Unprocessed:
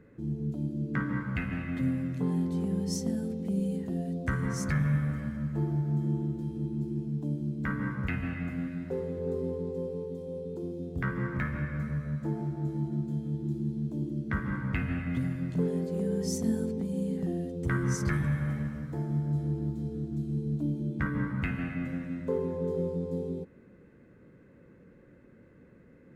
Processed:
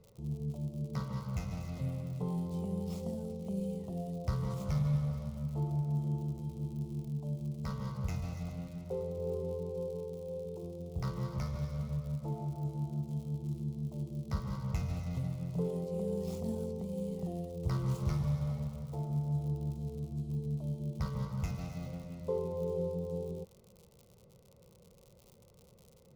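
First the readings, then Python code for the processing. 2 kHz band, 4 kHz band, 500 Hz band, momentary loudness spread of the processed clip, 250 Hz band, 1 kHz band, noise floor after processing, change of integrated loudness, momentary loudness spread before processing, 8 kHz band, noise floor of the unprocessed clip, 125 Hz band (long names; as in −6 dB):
−18.5 dB, −5.0 dB, −3.5 dB, 6 LU, −8.0 dB, −4.5 dB, −61 dBFS, −5.0 dB, 5 LU, −11.0 dB, −57 dBFS, −3.5 dB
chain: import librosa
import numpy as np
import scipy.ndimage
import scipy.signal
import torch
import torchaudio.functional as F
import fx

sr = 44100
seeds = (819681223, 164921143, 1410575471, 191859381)

y = scipy.signal.medfilt(x, 15)
y = fx.dmg_crackle(y, sr, seeds[0], per_s=98.0, level_db=-44.0)
y = fx.fixed_phaser(y, sr, hz=690.0, stages=4)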